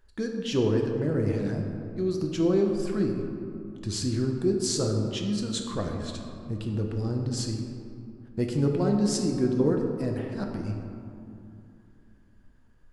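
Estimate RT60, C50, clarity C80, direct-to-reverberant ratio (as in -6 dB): 2.7 s, 3.5 dB, 4.5 dB, 1.5 dB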